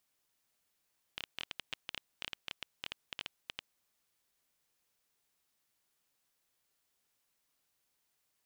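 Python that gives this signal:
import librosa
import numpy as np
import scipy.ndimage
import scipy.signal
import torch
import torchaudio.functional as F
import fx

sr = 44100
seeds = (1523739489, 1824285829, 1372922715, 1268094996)

y = fx.geiger_clicks(sr, seeds[0], length_s=2.63, per_s=11.0, level_db=-21.0)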